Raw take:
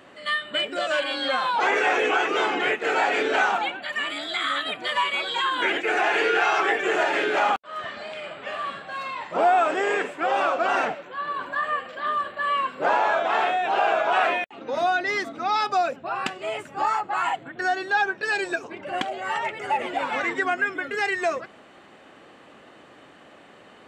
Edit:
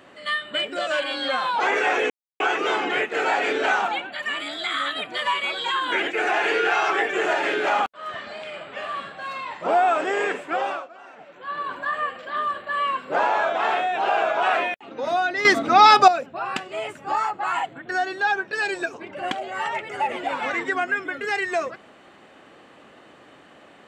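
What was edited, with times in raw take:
2.10 s: insert silence 0.30 s
10.24–11.22 s: dip -22 dB, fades 0.35 s
15.15–15.78 s: gain +11.5 dB

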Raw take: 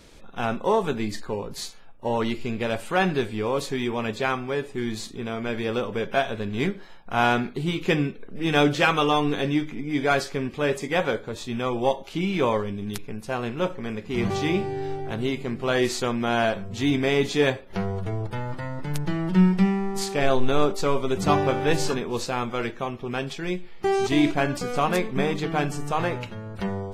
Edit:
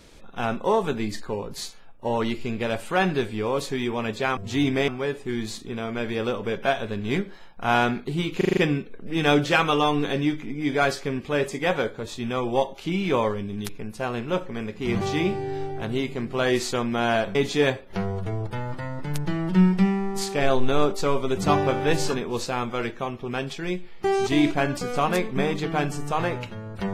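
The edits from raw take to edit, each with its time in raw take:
7.86 s: stutter 0.04 s, 6 plays
16.64–17.15 s: move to 4.37 s

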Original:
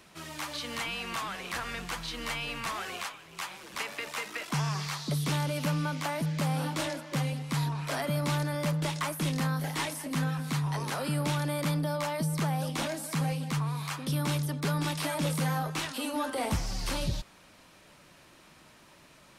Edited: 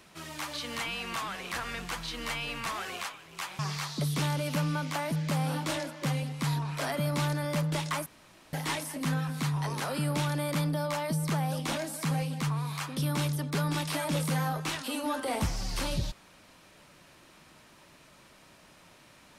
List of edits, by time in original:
3.59–4.69 s: delete
9.16–9.63 s: room tone

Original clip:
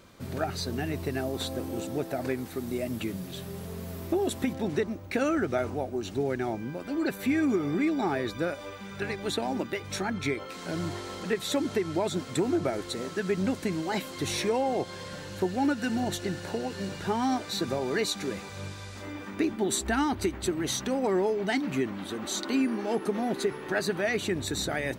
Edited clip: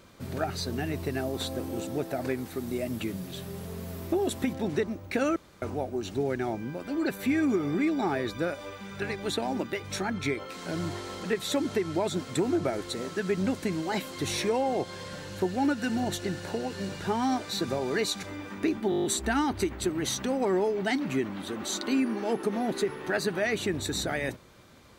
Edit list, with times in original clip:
5.36–5.62 s: room tone
18.23–18.99 s: delete
19.66 s: stutter 0.02 s, 8 plays

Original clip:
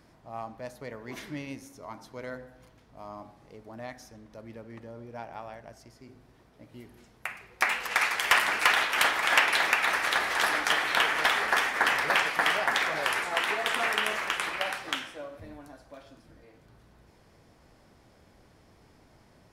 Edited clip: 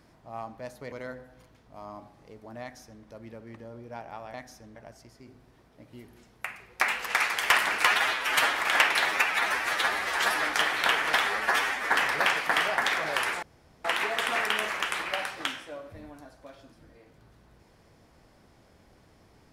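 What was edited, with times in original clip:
0.92–2.15 s: delete
3.85–4.27 s: copy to 5.57 s
8.66–9.13 s: stretch 1.5×
9.63–10.56 s: stretch 1.5×
11.38–11.81 s: stretch 1.5×
13.32 s: insert room tone 0.42 s

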